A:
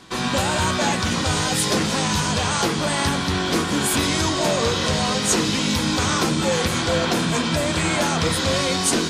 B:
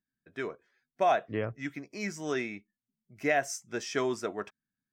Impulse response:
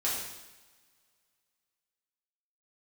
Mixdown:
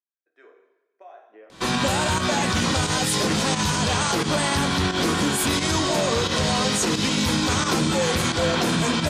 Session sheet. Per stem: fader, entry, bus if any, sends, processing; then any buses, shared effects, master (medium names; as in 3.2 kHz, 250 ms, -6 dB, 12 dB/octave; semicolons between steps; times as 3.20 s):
+2.0 dB, 1.50 s, no send, volume shaper 88 bpm, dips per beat 1, -9 dB, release 136 ms
-18.0 dB, 0.00 s, send -4 dB, high-pass 370 Hz 24 dB/octave; treble shelf 2.7 kHz -9.5 dB; compression 6:1, threshold -30 dBFS, peak gain reduction 8.5 dB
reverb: on, pre-delay 3 ms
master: peak limiter -13 dBFS, peak gain reduction 7 dB